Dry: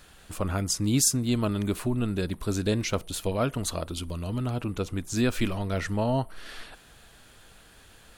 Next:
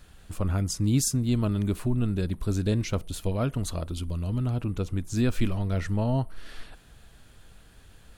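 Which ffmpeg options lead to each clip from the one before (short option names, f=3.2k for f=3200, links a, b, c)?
-af "lowshelf=f=220:g=11,volume=-5dB"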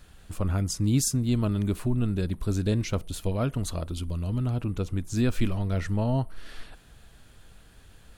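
-af anull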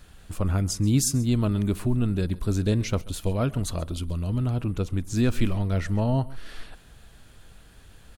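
-af "aecho=1:1:134:0.0944,volume=2dB"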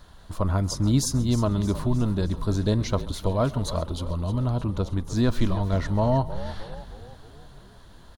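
-filter_complex "[0:a]equalizer=f=630:t=o:w=0.33:g=6,equalizer=f=1k:t=o:w=0.33:g=11,equalizer=f=2.5k:t=o:w=0.33:g=-9,equalizer=f=4k:t=o:w=0.33:g=5,equalizer=f=8k:t=o:w=0.33:g=-7,equalizer=f=12.5k:t=o:w=0.33:g=-9,asplit=7[a][b][c][d][e][f][g];[b]adelay=311,afreqshift=-49,volume=-13dB[h];[c]adelay=622,afreqshift=-98,volume=-18.4dB[i];[d]adelay=933,afreqshift=-147,volume=-23.7dB[j];[e]adelay=1244,afreqshift=-196,volume=-29.1dB[k];[f]adelay=1555,afreqshift=-245,volume=-34.4dB[l];[g]adelay=1866,afreqshift=-294,volume=-39.8dB[m];[a][h][i][j][k][l][m]amix=inputs=7:normalize=0"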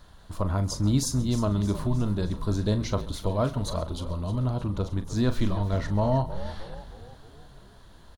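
-filter_complex "[0:a]asplit=2[a][b];[b]adelay=39,volume=-11dB[c];[a][c]amix=inputs=2:normalize=0,volume=-2.5dB"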